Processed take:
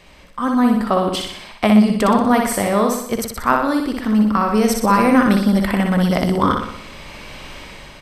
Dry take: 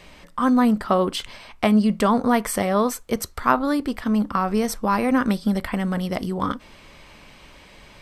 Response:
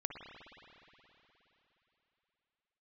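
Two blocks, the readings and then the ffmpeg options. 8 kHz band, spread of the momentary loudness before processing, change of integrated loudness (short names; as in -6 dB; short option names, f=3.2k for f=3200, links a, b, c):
+5.0 dB, 9 LU, +5.0 dB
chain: -filter_complex "[0:a]asplit=2[a][b];[b]aecho=0:1:61|122|183|244|305|366|427:0.631|0.334|0.177|0.0939|0.0498|0.0264|0.014[c];[a][c]amix=inputs=2:normalize=0,dynaudnorm=f=160:g=11:m=15.5dB,volume=-1dB"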